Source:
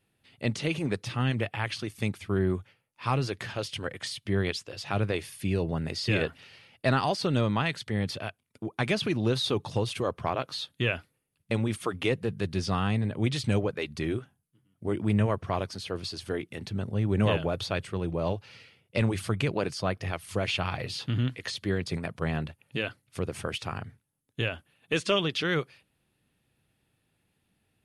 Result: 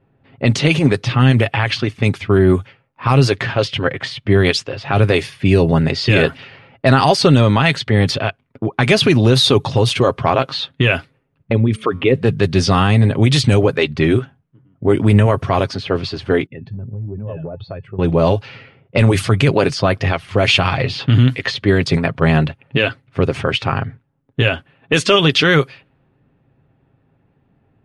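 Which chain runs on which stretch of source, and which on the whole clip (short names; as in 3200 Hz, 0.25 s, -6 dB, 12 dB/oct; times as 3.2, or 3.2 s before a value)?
11.52–12.15 formant sharpening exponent 1.5 + resonator 73 Hz, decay 2 s, mix 30%
16.46–17.99 spectral contrast raised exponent 1.8 + resonator 870 Hz, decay 0.23 s, mix 70% + compressor 12:1, threshold -38 dBFS
whole clip: low-pass opened by the level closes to 1100 Hz, open at -23 dBFS; comb 7.4 ms, depth 35%; maximiser +17 dB; gain -1 dB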